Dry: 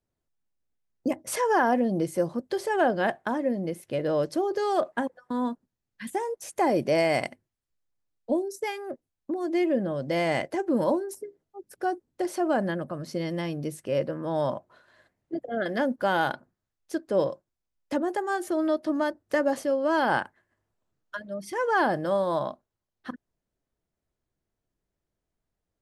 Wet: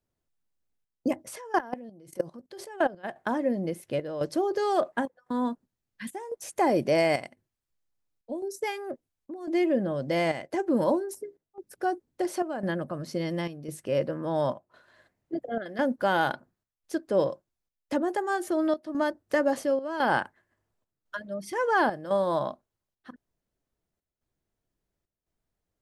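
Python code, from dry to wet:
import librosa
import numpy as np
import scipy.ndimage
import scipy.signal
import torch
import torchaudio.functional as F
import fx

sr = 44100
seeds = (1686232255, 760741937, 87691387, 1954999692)

y = fx.level_steps(x, sr, step_db=21, at=(1.26, 3.03), fade=0.02)
y = fx.chopper(y, sr, hz=0.95, depth_pct=65, duty_pct=80)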